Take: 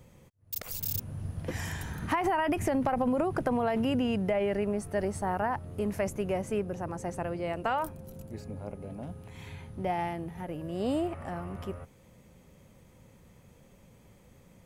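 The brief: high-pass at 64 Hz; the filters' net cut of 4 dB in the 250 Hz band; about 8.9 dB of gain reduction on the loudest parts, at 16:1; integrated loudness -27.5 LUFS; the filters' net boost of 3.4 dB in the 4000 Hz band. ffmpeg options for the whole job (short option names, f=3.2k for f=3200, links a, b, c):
-af "highpass=64,equalizer=f=250:t=o:g=-5,equalizer=f=4k:t=o:g=5.5,acompressor=threshold=-34dB:ratio=16,volume=12.5dB"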